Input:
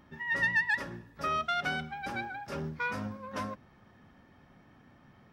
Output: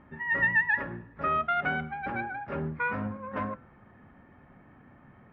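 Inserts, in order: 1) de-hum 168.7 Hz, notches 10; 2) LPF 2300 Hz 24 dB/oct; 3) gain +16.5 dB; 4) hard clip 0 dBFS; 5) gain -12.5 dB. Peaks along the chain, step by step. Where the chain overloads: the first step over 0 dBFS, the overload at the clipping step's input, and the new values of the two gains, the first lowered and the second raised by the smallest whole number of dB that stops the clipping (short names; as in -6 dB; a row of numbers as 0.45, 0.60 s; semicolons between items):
-18.5, -19.0, -2.5, -2.5, -15.0 dBFS; no overload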